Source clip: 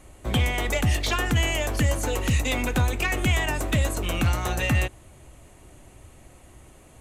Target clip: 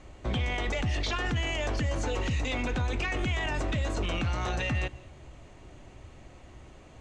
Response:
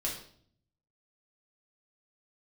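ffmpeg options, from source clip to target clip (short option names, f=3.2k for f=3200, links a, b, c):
-filter_complex "[0:a]lowpass=f=6k:w=0.5412,lowpass=f=6k:w=1.3066,alimiter=limit=-22.5dB:level=0:latency=1:release=15,asplit=2[a][b];[1:a]atrim=start_sample=2205,adelay=141[c];[b][c]afir=irnorm=-1:irlink=0,volume=-25dB[d];[a][d]amix=inputs=2:normalize=0"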